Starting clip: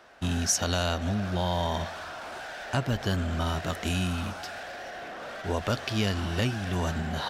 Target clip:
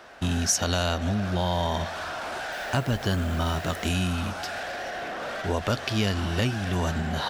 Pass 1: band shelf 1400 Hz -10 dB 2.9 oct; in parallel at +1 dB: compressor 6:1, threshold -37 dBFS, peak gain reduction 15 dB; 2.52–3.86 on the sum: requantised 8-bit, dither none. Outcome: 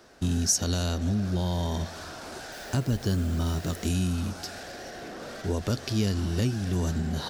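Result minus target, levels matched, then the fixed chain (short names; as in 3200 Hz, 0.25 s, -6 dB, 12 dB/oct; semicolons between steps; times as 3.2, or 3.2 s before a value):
1000 Hz band -8.5 dB
in parallel at +1 dB: compressor 6:1, threshold -37 dBFS, peak gain reduction 15 dB; 2.52–3.86 on the sum: requantised 8-bit, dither none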